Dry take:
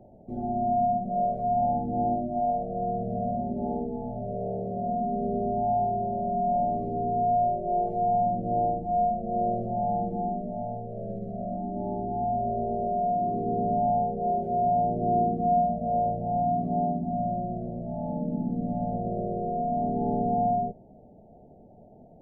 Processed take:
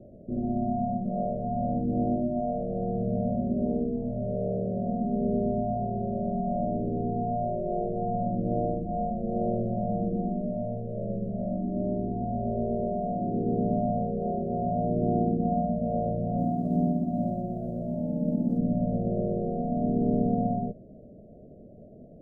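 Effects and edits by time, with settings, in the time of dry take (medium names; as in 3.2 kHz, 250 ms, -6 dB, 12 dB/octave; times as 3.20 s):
16.37–18.57 s: formants flattened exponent 0.3
whole clip: elliptic low-pass 610 Hz, stop band 40 dB; dynamic bell 400 Hz, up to -4 dB, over -50 dBFS, Q 5.6; trim +4.5 dB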